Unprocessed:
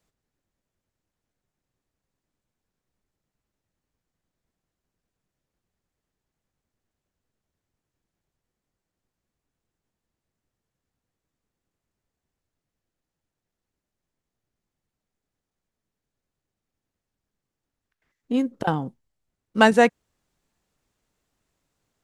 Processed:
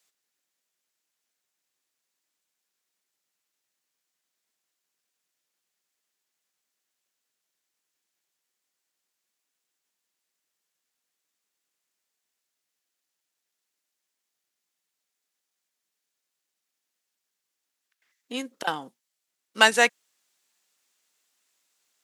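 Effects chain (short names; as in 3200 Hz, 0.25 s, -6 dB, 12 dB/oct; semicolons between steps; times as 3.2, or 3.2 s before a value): HPF 290 Hz 12 dB/oct; tilt shelf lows -9.5 dB, about 1300 Hz; one-sided clip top -7.5 dBFS, bottom -1.5 dBFS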